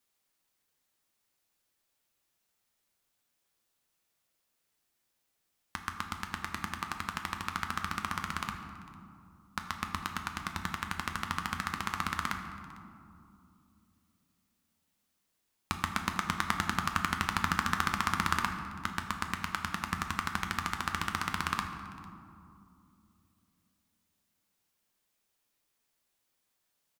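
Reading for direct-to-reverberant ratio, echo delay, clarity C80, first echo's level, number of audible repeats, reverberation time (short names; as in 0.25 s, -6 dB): 4.0 dB, 0.451 s, 7.5 dB, -22.5 dB, 1, 2.6 s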